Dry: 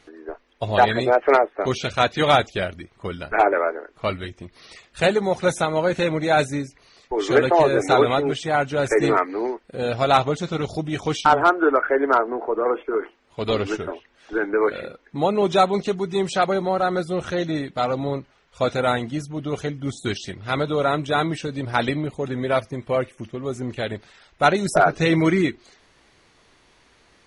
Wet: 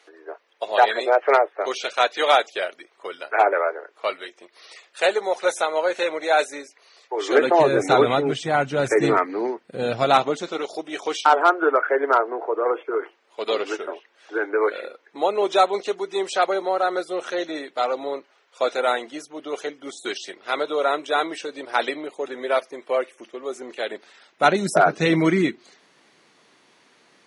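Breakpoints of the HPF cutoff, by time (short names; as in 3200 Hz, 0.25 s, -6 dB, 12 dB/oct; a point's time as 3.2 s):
HPF 24 dB/oct
7.2 s 420 Hz
7.71 s 120 Hz
9.93 s 120 Hz
10.65 s 360 Hz
23.83 s 360 Hz
24.57 s 160 Hz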